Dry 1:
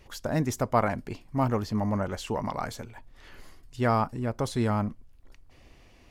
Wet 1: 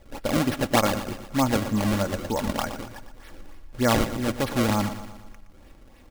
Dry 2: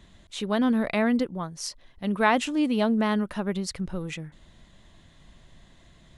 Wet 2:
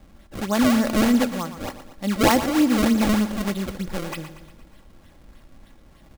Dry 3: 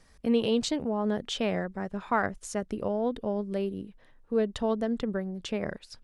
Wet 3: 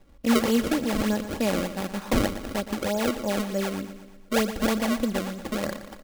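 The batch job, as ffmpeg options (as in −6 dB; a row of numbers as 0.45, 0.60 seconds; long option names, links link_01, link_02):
-af "acrusher=samples=29:mix=1:aa=0.000001:lfo=1:lforange=46.4:lforate=3.3,aecho=1:1:3.6:0.39,aecho=1:1:118|236|354|472|590|708:0.251|0.133|0.0706|0.0374|0.0198|0.0105,volume=3dB"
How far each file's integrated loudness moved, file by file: +4.0, +5.0, +3.5 LU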